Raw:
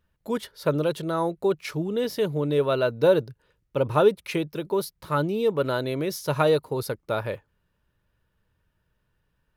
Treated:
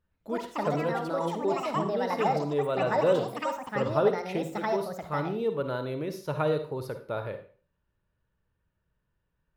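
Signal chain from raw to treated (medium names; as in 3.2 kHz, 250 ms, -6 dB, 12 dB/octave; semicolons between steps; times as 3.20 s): treble shelf 3.5 kHz -10 dB; ever faster or slower copies 112 ms, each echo +6 st, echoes 2; on a send: reverberation RT60 0.40 s, pre-delay 43 ms, DRR 8 dB; on the sum: trim -6 dB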